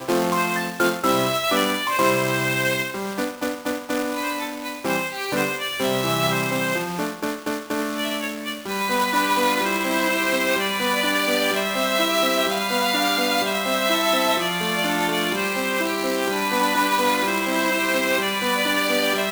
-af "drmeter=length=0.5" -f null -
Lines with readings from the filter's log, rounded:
Channel 1: DR: 11.1
Overall DR: 11.1